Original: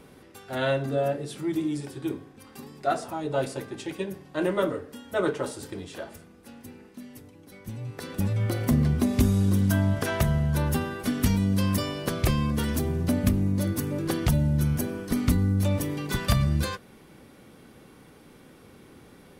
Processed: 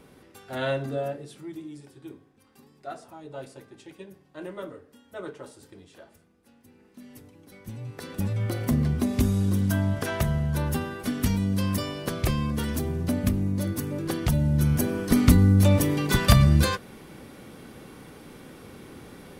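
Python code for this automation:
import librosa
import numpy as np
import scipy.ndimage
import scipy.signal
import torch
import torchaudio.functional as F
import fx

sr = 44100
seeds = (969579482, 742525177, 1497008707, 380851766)

y = fx.gain(x, sr, db=fx.line((0.85, -2.0), (1.63, -12.0), (6.64, -12.0), (7.13, -1.5), (14.23, -1.5), (15.08, 6.0)))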